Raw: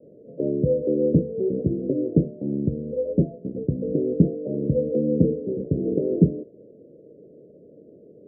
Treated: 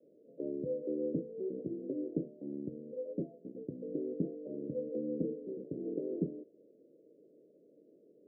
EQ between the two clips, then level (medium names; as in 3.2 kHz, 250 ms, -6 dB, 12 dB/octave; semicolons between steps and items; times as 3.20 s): ladder band-pass 360 Hz, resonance 55%; peaking EQ 330 Hz -14.5 dB 1.7 oct; +6.0 dB